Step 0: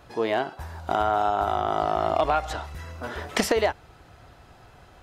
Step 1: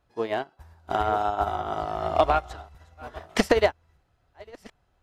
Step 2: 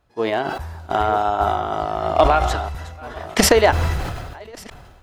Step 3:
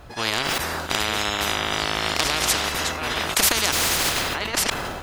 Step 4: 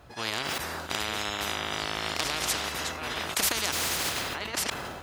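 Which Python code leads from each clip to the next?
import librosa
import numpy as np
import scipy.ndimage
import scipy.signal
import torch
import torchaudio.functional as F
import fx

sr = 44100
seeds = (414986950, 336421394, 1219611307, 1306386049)

y1 = fx.reverse_delay(x, sr, ms=672, wet_db=-10.0)
y1 = fx.low_shelf(y1, sr, hz=62.0, db=9.5)
y1 = fx.upward_expand(y1, sr, threshold_db=-35.0, expansion=2.5)
y1 = y1 * 10.0 ** (4.0 / 20.0)
y2 = fx.sustainer(y1, sr, db_per_s=35.0)
y2 = y2 * 10.0 ** (5.0 / 20.0)
y3 = fx.spectral_comp(y2, sr, ratio=10.0)
y4 = scipy.signal.sosfilt(scipy.signal.butter(2, 56.0, 'highpass', fs=sr, output='sos'), y3)
y4 = y4 * 10.0 ** (-7.5 / 20.0)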